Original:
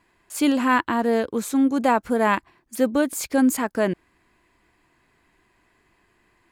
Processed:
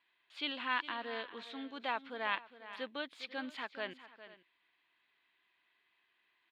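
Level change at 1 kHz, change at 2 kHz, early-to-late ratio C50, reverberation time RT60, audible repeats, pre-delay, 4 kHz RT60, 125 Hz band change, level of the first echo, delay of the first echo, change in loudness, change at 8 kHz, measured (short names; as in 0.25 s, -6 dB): -16.5 dB, -11.0 dB, none, none, 2, none, none, under -25 dB, -14.5 dB, 0.407 s, -18.0 dB, under -35 dB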